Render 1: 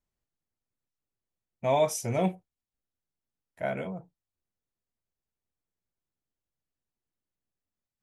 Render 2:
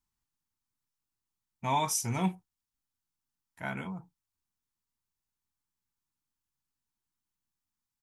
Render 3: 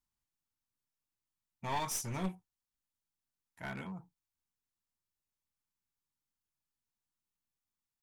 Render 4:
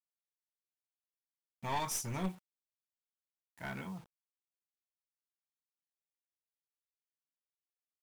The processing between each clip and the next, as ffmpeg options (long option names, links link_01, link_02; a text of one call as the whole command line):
ffmpeg -i in.wav -af "firequalizer=gain_entry='entry(270,0);entry(590,-16);entry(870,5);entry(2000,0);entry(5400,5)':delay=0.05:min_phase=1,volume=-1dB" out.wav
ffmpeg -i in.wav -af "aeval=exprs='clip(val(0),-1,0.0224)':channel_layout=same,volume=-4.5dB" out.wav
ffmpeg -i in.wav -af "acrusher=bits=9:mix=0:aa=0.000001" out.wav